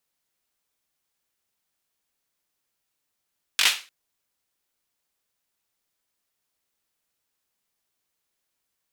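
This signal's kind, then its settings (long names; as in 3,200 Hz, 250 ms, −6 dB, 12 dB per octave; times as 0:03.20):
synth clap length 0.30 s, apart 21 ms, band 2,800 Hz, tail 0.32 s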